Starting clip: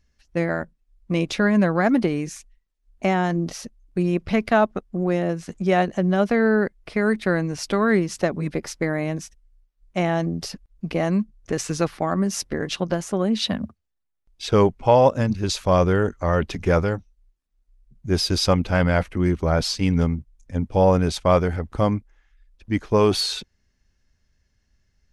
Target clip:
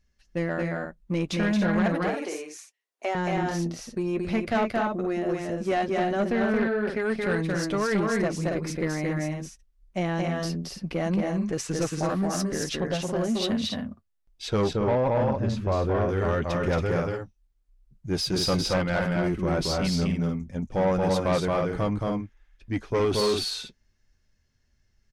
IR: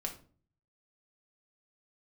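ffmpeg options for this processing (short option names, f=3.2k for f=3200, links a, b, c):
-filter_complex "[0:a]asettb=1/sr,asplit=3[a][b][c];[a]atrim=end=1.864[d];[b]atrim=start=1.86:end=3.15,asetpts=PTS-STARTPTS,afade=t=in:d=0.004:c=qsin,afade=t=out:st=1.286:d=0.004:c=qsin,highpass=f=390:w=0.5412,highpass=f=390:w=1.3066[e];[c]atrim=start=3.146[f];[d][e]acrossfade=d=0.004:c1=hsin:c2=qsin[g];[g][f]acrossfade=d=0.004:c1=qsin:c2=hsin,aecho=1:1:224.5|277:0.708|0.447,flanger=delay=5.3:depth=3.2:regen=-49:speed=0.1:shape=sinusoidal,asoftclip=type=tanh:threshold=-18dB,asettb=1/sr,asplit=3[h][i][j];[h]atrim=end=14.734[k];[i]atrim=start=14.73:end=16.09,asetpts=PTS-STARTPTS,afade=t=in:d=0.004:c=qsin,afade=t=out:st=1.356:d=0.004:c=qsin,lowpass=f=1.3k:p=1[l];[j]atrim=start=16.086[m];[k][l]acrossfade=d=0.004:c1=hsin:c2=qsin[n];[n][m]acrossfade=d=0.004:c1=qsin:c2=hsin"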